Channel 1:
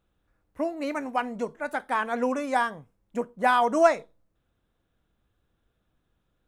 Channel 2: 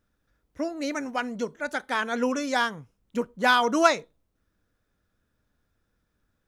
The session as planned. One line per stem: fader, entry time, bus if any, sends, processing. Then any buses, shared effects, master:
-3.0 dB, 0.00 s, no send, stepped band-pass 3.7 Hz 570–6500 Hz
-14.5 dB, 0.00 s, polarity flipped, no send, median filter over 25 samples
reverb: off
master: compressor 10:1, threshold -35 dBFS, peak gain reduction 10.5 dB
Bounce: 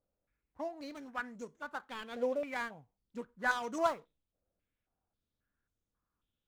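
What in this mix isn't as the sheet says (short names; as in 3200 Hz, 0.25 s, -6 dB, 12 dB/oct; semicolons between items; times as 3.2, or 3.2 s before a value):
stem 2: polarity flipped; master: missing compressor 10:1, threshold -35 dBFS, peak gain reduction 10.5 dB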